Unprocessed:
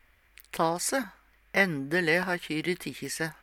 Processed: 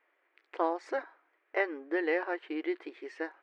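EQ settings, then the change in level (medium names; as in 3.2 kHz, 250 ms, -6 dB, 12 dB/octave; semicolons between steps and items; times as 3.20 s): brick-wall FIR high-pass 290 Hz; tape spacing loss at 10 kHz 44 dB; 0.0 dB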